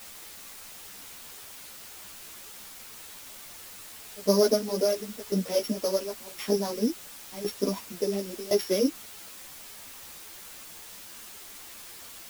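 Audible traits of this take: a buzz of ramps at a fixed pitch in blocks of 8 samples; tremolo saw down 0.94 Hz, depth 90%; a quantiser's noise floor 8-bit, dither triangular; a shimmering, thickened sound

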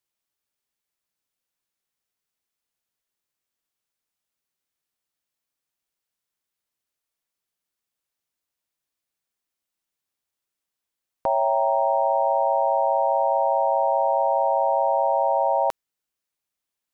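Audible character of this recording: noise floor -86 dBFS; spectral tilt -2.5 dB/octave

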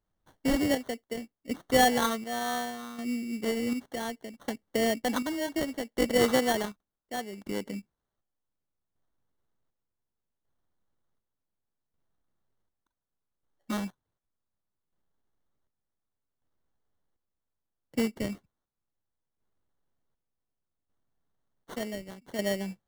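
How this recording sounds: phasing stages 4, 1.3 Hz, lowest notch 800–1900 Hz; aliases and images of a low sample rate 2.5 kHz, jitter 0%; chopped level 0.67 Hz, depth 60%, duty 50%

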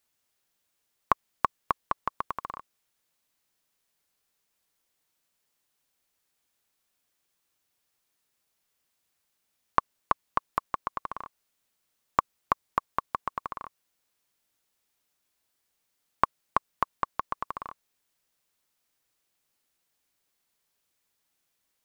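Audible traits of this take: noise floor -78 dBFS; spectral tilt -3.0 dB/octave

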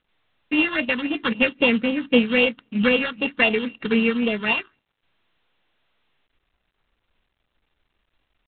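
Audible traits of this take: a buzz of ramps at a fixed pitch in blocks of 16 samples; phasing stages 6, 3.8 Hz, lowest notch 610–1600 Hz; a quantiser's noise floor 12-bit, dither triangular; G.726

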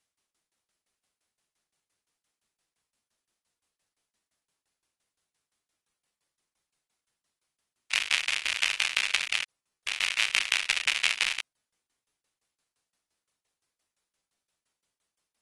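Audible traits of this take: tremolo saw down 5.8 Hz, depth 95%; AAC

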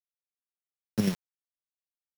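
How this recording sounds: a buzz of ramps at a fixed pitch in blocks of 8 samples; tremolo triangle 3.1 Hz, depth 70%; a quantiser's noise floor 6-bit, dither none

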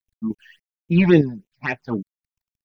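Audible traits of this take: a quantiser's noise floor 12-bit, dither none; random-step tremolo 3.3 Hz, depth 70%; phasing stages 8, 3.6 Hz, lowest notch 360–1400 Hz

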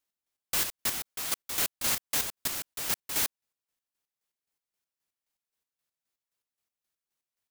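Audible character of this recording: chopped level 3.8 Hz, depth 60%, duty 40%

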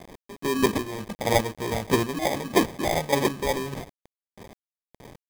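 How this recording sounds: aliases and images of a low sample rate 1.4 kHz, jitter 0%; chopped level 1.6 Hz, depth 60%, duty 25%; a quantiser's noise floor 8-bit, dither none

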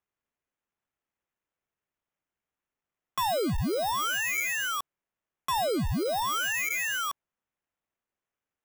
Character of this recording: aliases and images of a low sample rate 4.5 kHz, jitter 0%

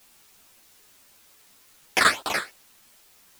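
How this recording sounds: phasing stages 8, 2.8 Hz, lowest notch 800–2200 Hz; a quantiser's noise floor 10-bit, dither triangular; a shimmering, thickened sound

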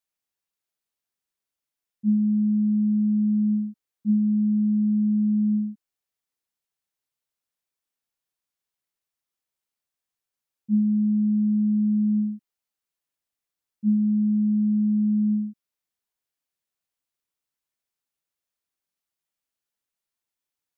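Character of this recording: noise floor -88 dBFS; spectral tilt +9.5 dB/octave

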